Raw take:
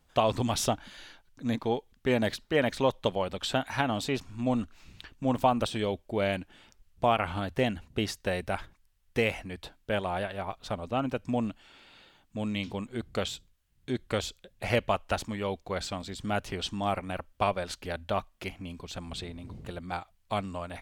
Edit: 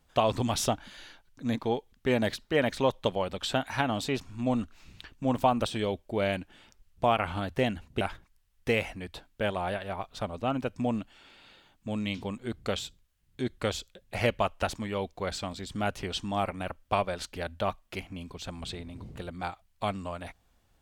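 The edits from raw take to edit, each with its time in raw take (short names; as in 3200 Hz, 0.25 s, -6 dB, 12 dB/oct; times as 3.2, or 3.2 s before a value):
8.01–8.5 cut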